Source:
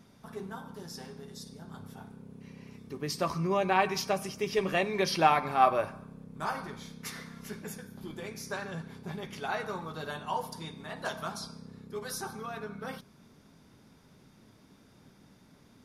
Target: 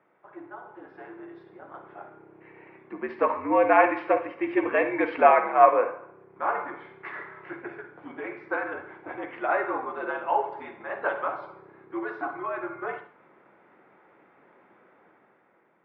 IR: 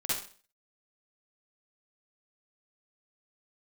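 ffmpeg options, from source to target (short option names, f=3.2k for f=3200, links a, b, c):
-filter_complex "[0:a]highpass=f=420:t=q:w=0.5412,highpass=f=420:t=q:w=1.307,lowpass=f=2.3k:t=q:w=0.5176,lowpass=f=2.3k:t=q:w=0.7071,lowpass=f=2.3k:t=q:w=1.932,afreqshift=-74,asplit=2[a][b];[1:a]atrim=start_sample=2205[c];[b][c]afir=irnorm=-1:irlink=0,volume=-13.5dB[d];[a][d]amix=inputs=2:normalize=0,dynaudnorm=f=270:g=7:m=8.5dB,volume=-1dB"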